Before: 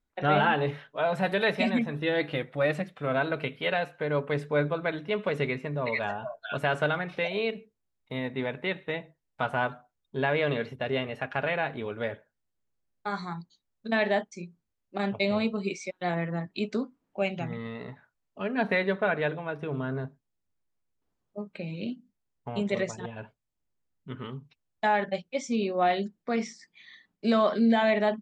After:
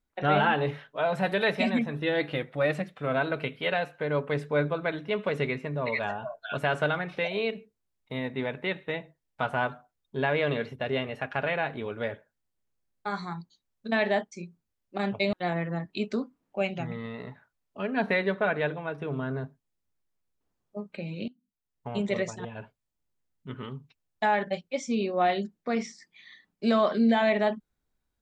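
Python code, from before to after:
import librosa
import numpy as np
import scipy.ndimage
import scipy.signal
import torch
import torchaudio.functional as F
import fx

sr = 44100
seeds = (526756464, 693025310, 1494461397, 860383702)

y = fx.edit(x, sr, fx.cut(start_s=15.33, length_s=0.61),
    fx.fade_in_from(start_s=21.89, length_s=0.6, curve='qua', floor_db=-20.5), tone=tone)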